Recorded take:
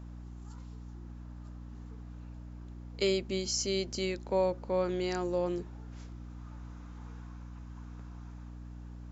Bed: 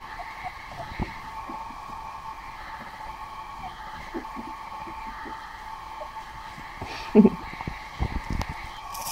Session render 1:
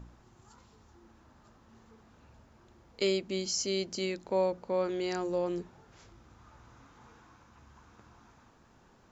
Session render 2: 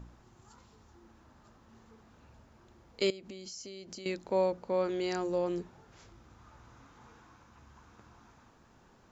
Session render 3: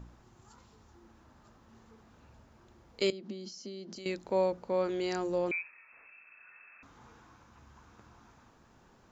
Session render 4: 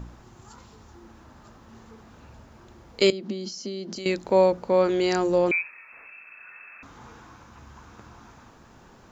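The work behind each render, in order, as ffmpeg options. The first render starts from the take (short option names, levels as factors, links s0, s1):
-af "bandreject=f=60:t=h:w=4,bandreject=f=120:t=h:w=4,bandreject=f=180:t=h:w=4,bandreject=f=240:t=h:w=4,bandreject=f=300:t=h:w=4"
-filter_complex "[0:a]asettb=1/sr,asplit=3[s0][s1][s2];[s0]atrim=end=3.104[s3];[s1]atrim=start=3.1:end=4.06,asetpts=PTS-STARTPTS,afade=t=in:d=0.004:c=qsin,afade=t=out:st=0.956:d=0.004:c=qsin,acompressor=threshold=0.00891:ratio=16:attack=3.2:release=140:knee=1:detection=peak[s4];[s2]atrim=start=4.056[s5];[s3][s4]acrossfade=d=0.004:c1=hsin:c2=qsin[s6];[s6][s5]acrossfade=d=0.004:c1=qsin:c2=hsin"
-filter_complex "[0:a]asettb=1/sr,asplit=3[s0][s1][s2];[s0]atrim=end=3.124[s3];[s1]atrim=start=3.12:end=3.96,asetpts=PTS-STARTPTS,afade=t=in:d=0.004:c=qsin,afade=t=out:st=0.836:d=0.004:c=qsin,highpass=f=140:w=0.5412,highpass=f=140:w=1.3066,equalizer=f=210:t=q:w=4:g=9,equalizer=f=340:t=q:w=4:g=5,equalizer=f=2400:t=q:w=4:g=-7,lowpass=f=5800:w=0.5412,lowpass=f=5800:w=1.3066[s4];[s2]atrim=start=3.956[s5];[s3][s4]acrossfade=d=0.004:c1=hsin:c2=qsin[s6];[s6][s5]acrossfade=d=0.004:c1=qsin:c2=hsin,asettb=1/sr,asplit=3[s7][s8][s9];[s7]atrim=end=5.514[s10];[s8]atrim=start=5.51:end=6.83,asetpts=PTS-STARTPTS,afade=t=in:d=0.004:c=qsin,afade=t=out:st=1.316:d=0.004:c=qsin,lowpass=f=2300:t=q:w=0.5098,lowpass=f=2300:t=q:w=0.6013,lowpass=f=2300:t=q:w=0.9,lowpass=f=2300:t=q:w=2.563,afreqshift=-2700[s11];[s9]atrim=start=6.826[s12];[s10][s11]acrossfade=d=0.004:c1=hsin:c2=qsin[s13];[s13][s12]acrossfade=d=0.004:c1=qsin:c2=hsin"
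-af "volume=3.16"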